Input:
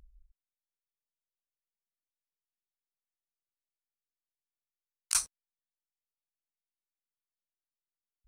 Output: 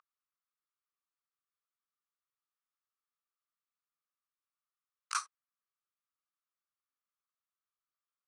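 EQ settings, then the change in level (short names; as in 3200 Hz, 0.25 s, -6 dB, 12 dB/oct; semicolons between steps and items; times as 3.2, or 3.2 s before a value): resonant high-pass 1200 Hz, resonance Q 7.3; air absorption 84 m; -4.0 dB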